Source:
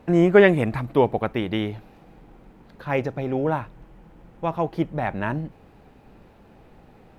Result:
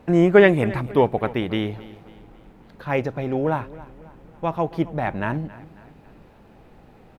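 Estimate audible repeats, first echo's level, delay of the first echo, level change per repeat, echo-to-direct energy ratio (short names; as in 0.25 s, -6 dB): 3, -19.0 dB, 0.273 s, -7.0 dB, -18.0 dB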